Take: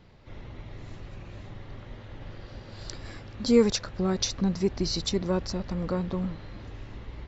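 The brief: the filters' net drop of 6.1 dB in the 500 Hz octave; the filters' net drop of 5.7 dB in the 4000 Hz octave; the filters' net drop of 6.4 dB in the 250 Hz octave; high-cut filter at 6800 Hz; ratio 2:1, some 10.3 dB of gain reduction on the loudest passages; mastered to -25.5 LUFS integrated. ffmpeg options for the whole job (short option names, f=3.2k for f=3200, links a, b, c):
-af "lowpass=6.8k,equalizer=f=250:t=o:g=-8,equalizer=f=500:t=o:g=-4.5,equalizer=f=4k:t=o:g=-6,acompressor=threshold=-40dB:ratio=2,volume=17dB"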